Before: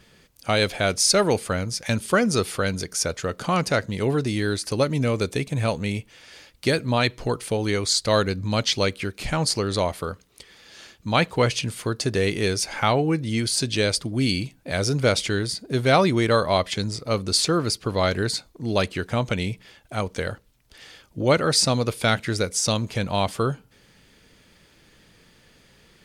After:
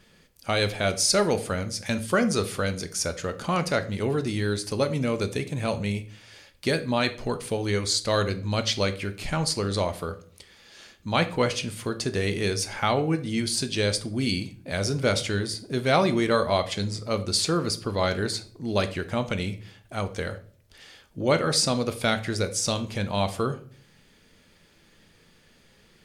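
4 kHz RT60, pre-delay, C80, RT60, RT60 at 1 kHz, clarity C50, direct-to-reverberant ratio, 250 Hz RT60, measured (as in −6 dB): 0.35 s, 3 ms, 19.5 dB, 0.50 s, 0.40 s, 14.5 dB, 9.0 dB, 0.60 s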